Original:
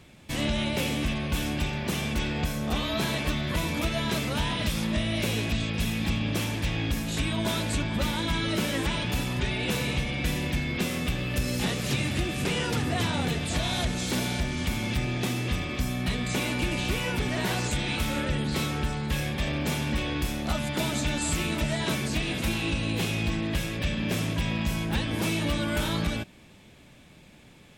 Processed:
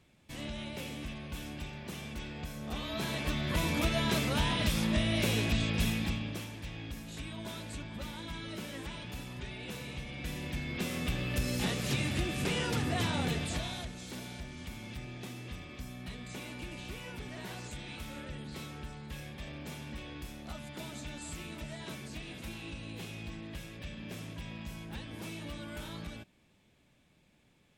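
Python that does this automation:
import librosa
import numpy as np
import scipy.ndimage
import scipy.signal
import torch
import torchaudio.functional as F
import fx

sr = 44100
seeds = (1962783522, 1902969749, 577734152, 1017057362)

y = fx.gain(x, sr, db=fx.line((2.41, -13.0), (3.69, -2.0), (5.88, -2.0), (6.5, -14.0), (9.9, -14.0), (11.15, -4.5), (13.42, -4.5), (13.92, -15.0)))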